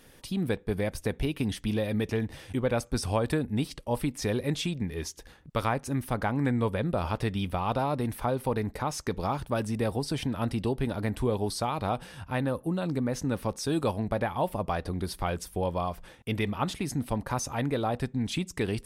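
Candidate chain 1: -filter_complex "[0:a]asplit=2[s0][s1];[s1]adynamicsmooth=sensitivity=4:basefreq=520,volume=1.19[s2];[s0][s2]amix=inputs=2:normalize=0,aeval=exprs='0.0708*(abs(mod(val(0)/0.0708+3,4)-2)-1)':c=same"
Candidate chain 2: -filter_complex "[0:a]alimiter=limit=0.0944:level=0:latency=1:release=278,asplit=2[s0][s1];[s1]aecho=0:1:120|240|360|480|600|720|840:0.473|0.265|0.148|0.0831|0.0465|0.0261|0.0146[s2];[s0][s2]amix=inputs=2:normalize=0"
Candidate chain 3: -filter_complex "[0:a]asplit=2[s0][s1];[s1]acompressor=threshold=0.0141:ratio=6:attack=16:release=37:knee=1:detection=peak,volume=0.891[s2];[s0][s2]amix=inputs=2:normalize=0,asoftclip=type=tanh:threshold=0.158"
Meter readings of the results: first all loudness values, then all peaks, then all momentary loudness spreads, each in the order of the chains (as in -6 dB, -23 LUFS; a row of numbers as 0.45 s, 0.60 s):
-30.5 LUFS, -32.0 LUFS, -28.5 LUFS; -23.0 dBFS, -17.0 dBFS, -16.5 dBFS; 3 LU, 3 LU, 3 LU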